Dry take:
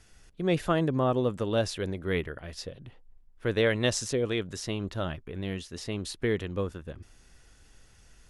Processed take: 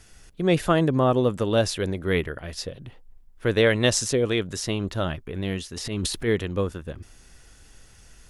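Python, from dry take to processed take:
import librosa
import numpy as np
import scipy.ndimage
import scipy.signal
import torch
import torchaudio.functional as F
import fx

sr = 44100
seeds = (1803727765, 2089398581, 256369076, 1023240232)

y = fx.high_shelf(x, sr, hz=8900.0, db=6.0)
y = fx.transient(y, sr, attack_db=-7, sustain_db=11, at=(5.72, 6.27), fade=0.02)
y = F.gain(torch.from_numpy(y), 5.5).numpy()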